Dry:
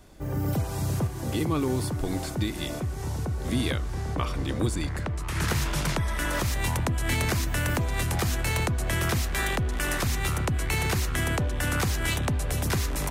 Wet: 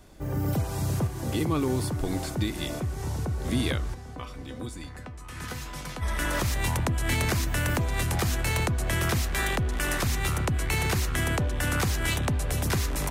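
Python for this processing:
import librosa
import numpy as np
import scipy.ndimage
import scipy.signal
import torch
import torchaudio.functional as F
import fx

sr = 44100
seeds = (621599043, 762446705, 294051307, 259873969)

y = fx.comb_fb(x, sr, f0_hz=250.0, decay_s=0.18, harmonics='all', damping=0.0, mix_pct=80, at=(3.93, 6.01), fade=0.02)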